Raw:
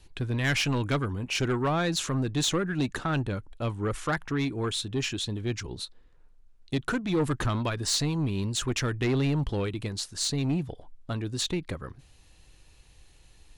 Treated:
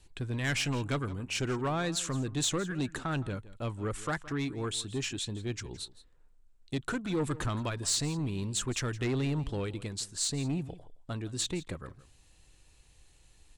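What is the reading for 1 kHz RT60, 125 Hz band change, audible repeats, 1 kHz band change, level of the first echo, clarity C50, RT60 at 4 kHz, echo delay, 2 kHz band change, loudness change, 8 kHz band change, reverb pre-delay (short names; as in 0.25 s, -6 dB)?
none, -5.0 dB, 1, -5.0 dB, -18.0 dB, none, none, 0.167 s, -5.0 dB, -4.5 dB, -0.5 dB, none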